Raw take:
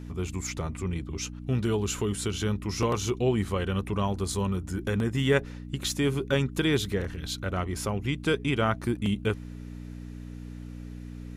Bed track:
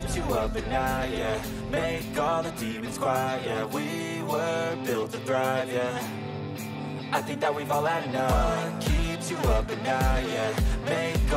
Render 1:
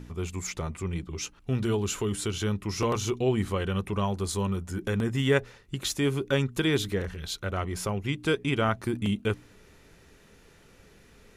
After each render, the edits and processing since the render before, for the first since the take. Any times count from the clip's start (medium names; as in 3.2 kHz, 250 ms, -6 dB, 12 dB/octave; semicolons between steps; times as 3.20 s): de-hum 60 Hz, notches 5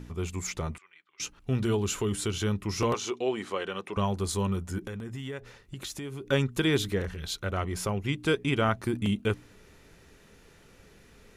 0.78–1.20 s: ladder band-pass 2.1 kHz, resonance 30%; 2.94–3.97 s: band-pass 370–7400 Hz; 4.78–6.27 s: compression 5:1, threshold -35 dBFS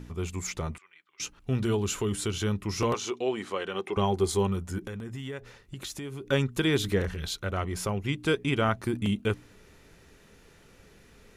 3.73–4.47 s: small resonant body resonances 380/780/2100/3200 Hz, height 10 dB; 6.84–7.29 s: gain +3 dB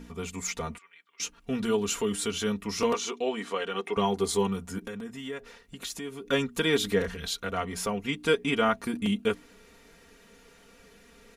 bass shelf 170 Hz -7.5 dB; comb 4.3 ms, depth 78%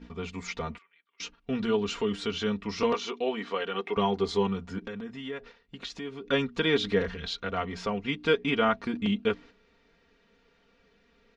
low-pass 4.8 kHz 24 dB/octave; gate -47 dBFS, range -9 dB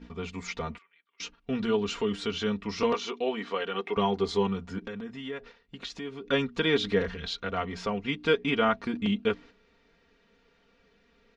no audible change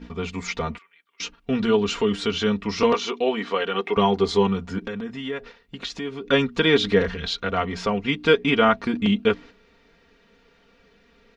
trim +7 dB